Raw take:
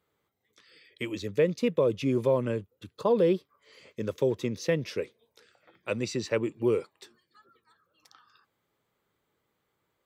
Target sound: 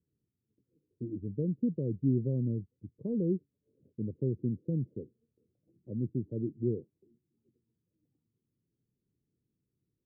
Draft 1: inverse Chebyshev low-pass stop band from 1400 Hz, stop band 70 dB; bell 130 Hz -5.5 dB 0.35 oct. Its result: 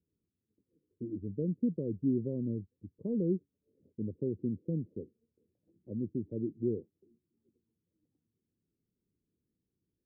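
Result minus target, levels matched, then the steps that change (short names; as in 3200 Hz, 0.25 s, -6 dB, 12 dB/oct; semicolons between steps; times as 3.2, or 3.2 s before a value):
125 Hz band -3.5 dB
change: bell 130 Hz +4 dB 0.35 oct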